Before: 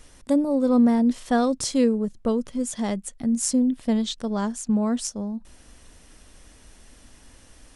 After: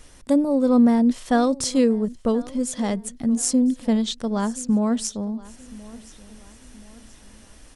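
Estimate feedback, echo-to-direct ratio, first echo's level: 42%, −20.0 dB, −21.0 dB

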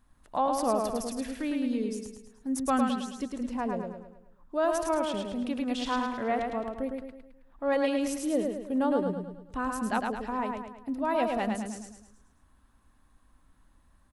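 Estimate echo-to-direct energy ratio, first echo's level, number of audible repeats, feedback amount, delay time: −3.0 dB, −4.0 dB, 5, 47%, 107 ms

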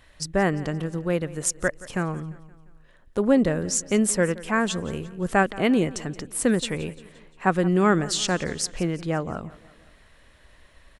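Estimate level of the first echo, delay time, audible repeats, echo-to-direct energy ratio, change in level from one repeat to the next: −19.0 dB, 174 ms, 3, −17.5 dB, −6.0 dB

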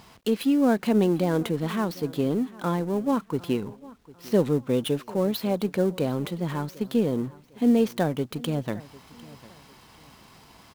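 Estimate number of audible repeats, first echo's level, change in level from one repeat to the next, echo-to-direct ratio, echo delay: 2, −21.0 dB, −9.5 dB, −20.5 dB, 751 ms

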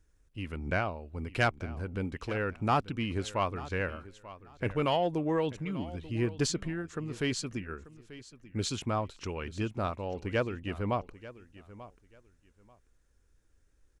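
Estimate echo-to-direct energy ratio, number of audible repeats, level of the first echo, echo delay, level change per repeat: −17.0 dB, 2, −17.0 dB, 888 ms, −13.5 dB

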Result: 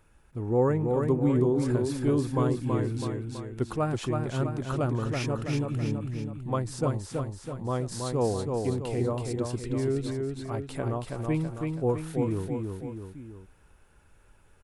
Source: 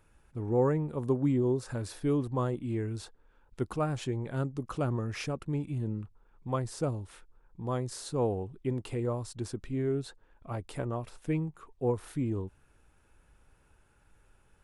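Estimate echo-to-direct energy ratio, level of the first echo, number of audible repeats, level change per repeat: −2.5 dB, −4.0 dB, 3, −5.5 dB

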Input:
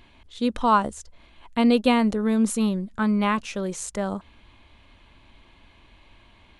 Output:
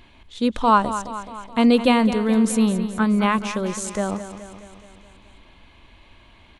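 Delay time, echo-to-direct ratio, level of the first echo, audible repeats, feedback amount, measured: 212 ms, −9.5 dB, −11.5 dB, 5, 58%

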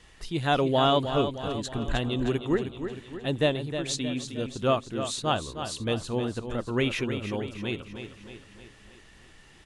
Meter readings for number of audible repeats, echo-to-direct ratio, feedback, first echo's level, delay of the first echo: 5, −7.5 dB, 53%, −9.0 dB, 311 ms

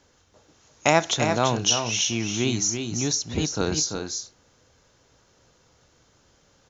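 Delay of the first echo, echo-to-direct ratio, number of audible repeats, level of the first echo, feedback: 339 ms, −6.0 dB, 1, −6.5 dB, repeats not evenly spaced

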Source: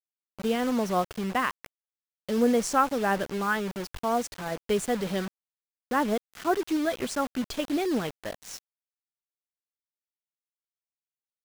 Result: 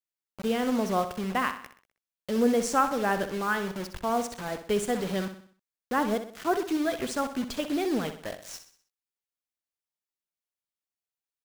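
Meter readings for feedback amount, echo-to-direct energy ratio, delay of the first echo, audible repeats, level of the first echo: 45%, −9.5 dB, 63 ms, 4, −10.5 dB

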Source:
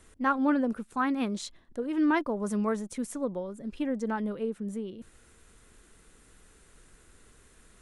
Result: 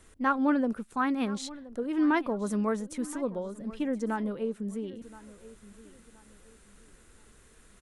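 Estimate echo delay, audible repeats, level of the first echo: 1,023 ms, 2, −18.5 dB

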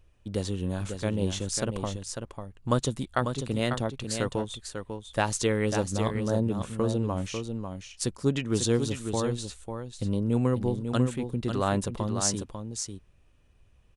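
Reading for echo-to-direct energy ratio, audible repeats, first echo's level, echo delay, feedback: −7.0 dB, 1, −7.0 dB, 546 ms, repeats not evenly spaced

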